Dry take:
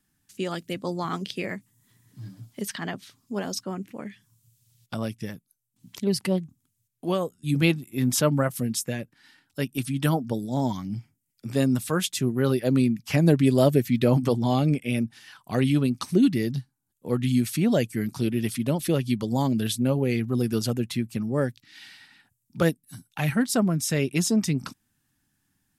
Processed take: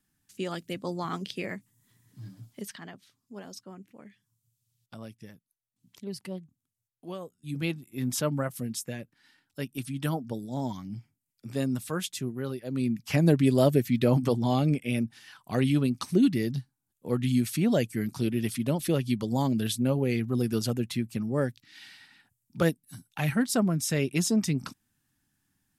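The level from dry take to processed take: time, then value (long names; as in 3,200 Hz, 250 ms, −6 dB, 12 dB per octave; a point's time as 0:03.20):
0:02.47 −3.5 dB
0:02.90 −13 dB
0:07.20 −13 dB
0:08.06 −6.5 dB
0:12.13 −6.5 dB
0:12.66 −13.5 dB
0:12.94 −2.5 dB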